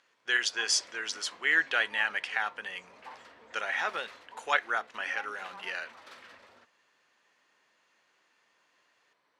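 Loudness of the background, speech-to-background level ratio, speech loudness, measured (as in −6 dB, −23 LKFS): −50.5 LKFS, 20.0 dB, −30.5 LKFS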